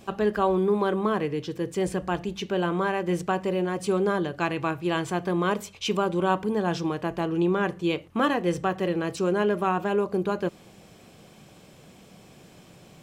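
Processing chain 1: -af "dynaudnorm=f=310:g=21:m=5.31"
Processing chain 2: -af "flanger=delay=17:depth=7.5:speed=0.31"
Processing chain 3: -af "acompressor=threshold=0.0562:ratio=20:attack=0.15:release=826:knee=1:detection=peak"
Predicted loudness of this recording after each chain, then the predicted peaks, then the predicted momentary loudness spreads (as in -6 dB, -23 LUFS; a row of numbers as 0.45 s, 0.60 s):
-18.5 LUFS, -29.5 LUFS, -34.5 LUFS; -1.5 dBFS, -12.5 dBFS, -24.0 dBFS; 11 LU, 5 LU, 18 LU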